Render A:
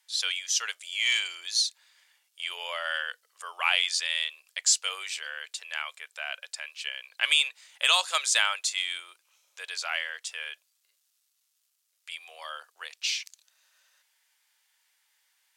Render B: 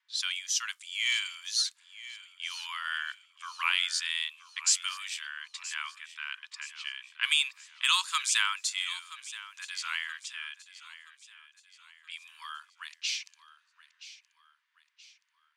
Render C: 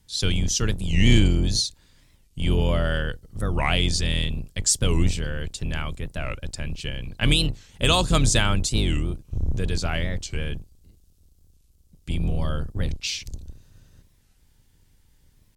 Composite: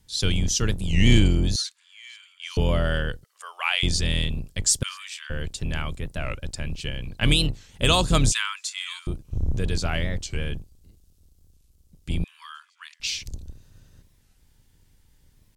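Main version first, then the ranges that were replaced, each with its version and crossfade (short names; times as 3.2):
C
1.56–2.57 from B
3.24–3.83 from A
4.83–5.3 from B
8.32–9.07 from B
12.24–13 from B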